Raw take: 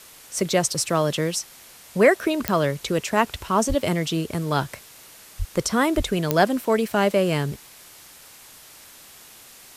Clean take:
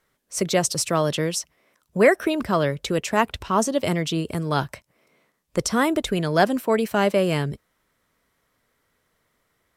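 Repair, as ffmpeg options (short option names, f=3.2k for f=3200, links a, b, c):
-filter_complex "[0:a]adeclick=t=4,asplit=3[a][b][c];[a]afade=t=out:st=3.68:d=0.02[d];[b]highpass=f=140:w=0.5412,highpass=f=140:w=1.3066,afade=t=in:st=3.68:d=0.02,afade=t=out:st=3.8:d=0.02[e];[c]afade=t=in:st=3.8:d=0.02[f];[d][e][f]amix=inputs=3:normalize=0,asplit=3[g][h][i];[g]afade=t=out:st=5.38:d=0.02[j];[h]highpass=f=140:w=0.5412,highpass=f=140:w=1.3066,afade=t=in:st=5.38:d=0.02,afade=t=out:st=5.5:d=0.02[k];[i]afade=t=in:st=5.5:d=0.02[l];[j][k][l]amix=inputs=3:normalize=0,asplit=3[m][n][o];[m]afade=t=out:st=5.96:d=0.02[p];[n]highpass=f=140:w=0.5412,highpass=f=140:w=1.3066,afade=t=in:st=5.96:d=0.02,afade=t=out:st=6.08:d=0.02[q];[o]afade=t=in:st=6.08:d=0.02[r];[p][q][r]amix=inputs=3:normalize=0,afwtdn=0.0056"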